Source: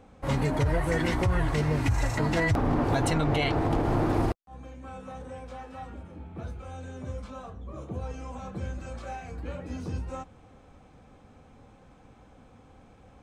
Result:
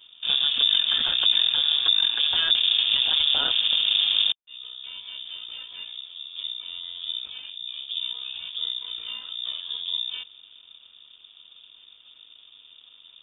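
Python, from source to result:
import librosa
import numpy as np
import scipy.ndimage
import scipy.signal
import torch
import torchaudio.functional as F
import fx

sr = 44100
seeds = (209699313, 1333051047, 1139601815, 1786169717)

y = np.where(x < 0.0, 10.0 ** (-12.0 / 20.0) * x, x)
y = fx.peak_eq(y, sr, hz=1500.0, db=-11.5, octaves=0.66)
y = fx.freq_invert(y, sr, carrier_hz=3600)
y = y * 10.0 ** (5.0 / 20.0)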